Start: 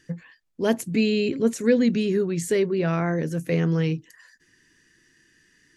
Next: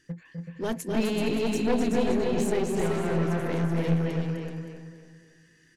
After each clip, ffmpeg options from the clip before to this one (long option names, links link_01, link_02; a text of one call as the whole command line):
ffmpeg -i in.wav -filter_complex "[0:a]asplit=2[link_01][link_02];[link_02]aecho=0:1:253|379|462|570:0.562|0.531|0.133|0.266[link_03];[link_01][link_03]amix=inputs=2:normalize=0,aeval=exprs='clip(val(0),-1,0.0596)':channel_layout=same,asplit=2[link_04][link_05];[link_05]adelay=283,lowpass=frequency=2400:poles=1,volume=-4dB,asplit=2[link_06][link_07];[link_07]adelay=283,lowpass=frequency=2400:poles=1,volume=0.4,asplit=2[link_08][link_09];[link_09]adelay=283,lowpass=frequency=2400:poles=1,volume=0.4,asplit=2[link_10][link_11];[link_11]adelay=283,lowpass=frequency=2400:poles=1,volume=0.4,asplit=2[link_12][link_13];[link_13]adelay=283,lowpass=frequency=2400:poles=1,volume=0.4[link_14];[link_06][link_08][link_10][link_12][link_14]amix=inputs=5:normalize=0[link_15];[link_04][link_15]amix=inputs=2:normalize=0,volume=-4.5dB" out.wav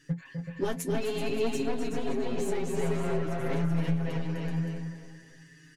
ffmpeg -i in.wav -af "acompressor=threshold=-31dB:ratio=6,flanger=delay=6.5:depth=5.3:regen=42:speed=0.53:shape=sinusoidal,aecho=1:1:7.3:0.82,volume=6dB" out.wav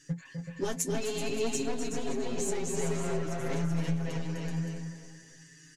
ffmpeg -i in.wav -af "equalizer=frequency=6800:width_type=o:width=0.98:gain=13,volume=-2.5dB" out.wav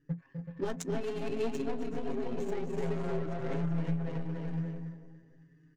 ffmpeg -i in.wav -af "adynamicsmooth=sensitivity=5.5:basefreq=750,volume=-1.5dB" out.wav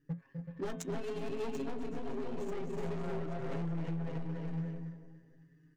ffmpeg -i in.wav -af "bandreject=frequency=109.3:width_type=h:width=4,bandreject=frequency=218.6:width_type=h:width=4,bandreject=frequency=327.9:width_type=h:width=4,bandreject=frequency=437.2:width_type=h:width=4,bandreject=frequency=546.5:width_type=h:width=4,bandreject=frequency=655.8:width_type=h:width=4,bandreject=frequency=765.1:width_type=h:width=4,bandreject=frequency=874.4:width_type=h:width=4,bandreject=frequency=983.7:width_type=h:width=4,bandreject=frequency=1093:width_type=h:width=4,bandreject=frequency=1202.3:width_type=h:width=4,bandreject=frequency=1311.6:width_type=h:width=4,bandreject=frequency=1420.9:width_type=h:width=4,bandreject=frequency=1530.2:width_type=h:width=4,bandreject=frequency=1639.5:width_type=h:width=4,bandreject=frequency=1748.8:width_type=h:width=4,bandreject=frequency=1858.1:width_type=h:width=4,bandreject=frequency=1967.4:width_type=h:width=4,bandreject=frequency=2076.7:width_type=h:width=4,bandreject=frequency=2186:width_type=h:width=4,bandreject=frequency=2295.3:width_type=h:width=4,bandreject=frequency=2404.6:width_type=h:width=4,bandreject=frequency=2513.9:width_type=h:width=4,bandreject=frequency=2623.2:width_type=h:width=4,bandreject=frequency=2732.5:width_type=h:width=4,bandreject=frequency=2841.8:width_type=h:width=4,bandreject=frequency=2951.1:width_type=h:width=4,bandreject=frequency=3060.4:width_type=h:width=4,bandreject=frequency=3169.7:width_type=h:width=4,bandreject=frequency=3279:width_type=h:width=4,bandreject=frequency=3388.3:width_type=h:width=4,bandreject=frequency=3497.6:width_type=h:width=4,bandreject=frequency=3606.9:width_type=h:width=4,bandreject=frequency=3716.2:width_type=h:width=4,bandreject=frequency=3825.5:width_type=h:width=4,asoftclip=type=hard:threshold=-29.5dB,volume=-2dB" out.wav